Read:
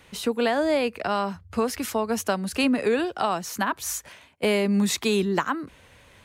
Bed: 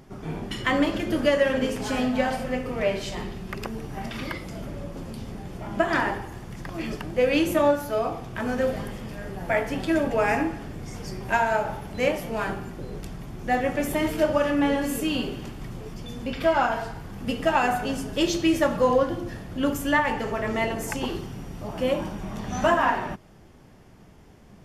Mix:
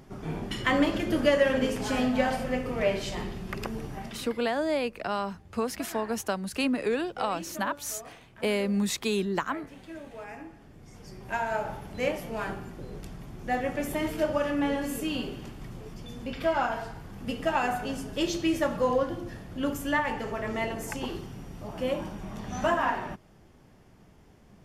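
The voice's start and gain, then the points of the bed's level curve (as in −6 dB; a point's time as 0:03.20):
4.00 s, −5.0 dB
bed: 0:03.87 −1.5 dB
0:04.54 −19.5 dB
0:10.32 −19.5 dB
0:11.65 −5 dB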